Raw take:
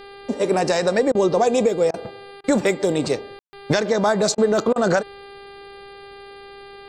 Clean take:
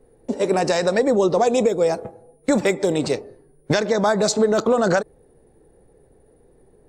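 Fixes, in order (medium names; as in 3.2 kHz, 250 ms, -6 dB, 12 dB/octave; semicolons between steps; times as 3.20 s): de-hum 398.9 Hz, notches 12; room tone fill 3.39–3.53 s; interpolate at 1.12/1.91/2.41/4.35/4.73 s, 28 ms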